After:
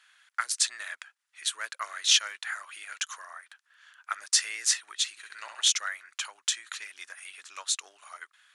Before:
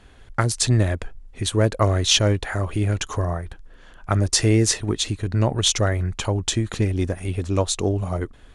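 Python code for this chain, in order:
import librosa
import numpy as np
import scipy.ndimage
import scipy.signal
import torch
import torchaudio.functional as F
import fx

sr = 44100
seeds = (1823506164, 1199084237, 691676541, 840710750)

y = scipy.signal.sosfilt(scipy.signal.cheby1(3, 1.0, 1400.0, 'highpass', fs=sr, output='sos'), x)
y = fx.room_flutter(y, sr, wall_m=11.4, rt60_s=0.78, at=(5.1, 5.63))
y = y * 10.0 ** (-2.5 / 20.0)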